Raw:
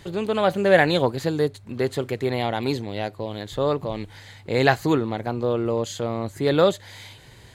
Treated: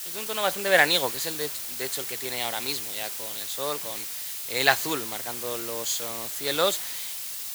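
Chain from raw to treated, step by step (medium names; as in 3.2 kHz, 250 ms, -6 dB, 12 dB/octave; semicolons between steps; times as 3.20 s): added noise pink -38 dBFS; tilt EQ +4.5 dB/octave; three bands expanded up and down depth 40%; trim -5 dB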